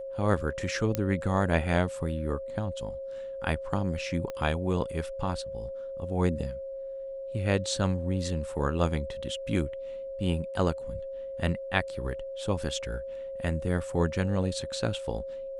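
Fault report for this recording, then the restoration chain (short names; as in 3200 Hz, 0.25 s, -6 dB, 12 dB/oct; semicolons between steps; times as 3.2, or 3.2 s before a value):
tone 540 Hz -35 dBFS
0.95 pop -12 dBFS
4.3 pop -22 dBFS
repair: de-click; notch 540 Hz, Q 30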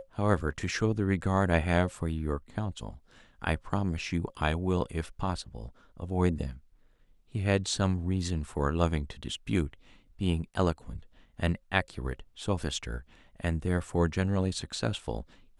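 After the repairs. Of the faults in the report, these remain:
4.3 pop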